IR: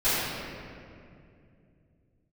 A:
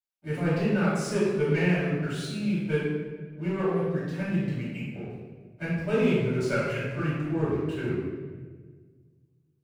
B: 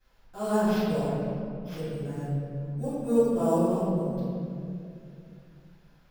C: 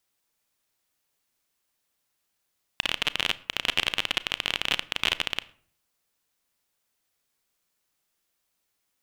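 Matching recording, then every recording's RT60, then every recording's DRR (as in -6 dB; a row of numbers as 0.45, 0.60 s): B; 1.5, 2.5, 0.55 s; -11.5, -18.0, 16.5 dB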